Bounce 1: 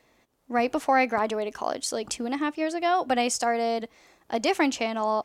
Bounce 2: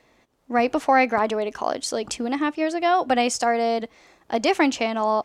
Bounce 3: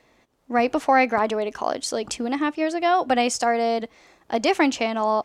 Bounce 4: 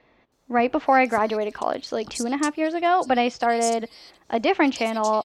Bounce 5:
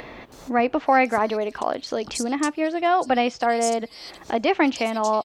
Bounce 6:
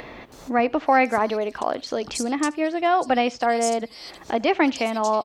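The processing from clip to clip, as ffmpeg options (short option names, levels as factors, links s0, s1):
-af "highshelf=f=10000:g=-10.5,volume=1.58"
-af anull
-filter_complex "[0:a]acrossover=split=4400[s0][s1];[s1]adelay=320[s2];[s0][s2]amix=inputs=2:normalize=0"
-af "acompressor=mode=upward:threshold=0.0708:ratio=2.5"
-af "aecho=1:1:77:0.0631"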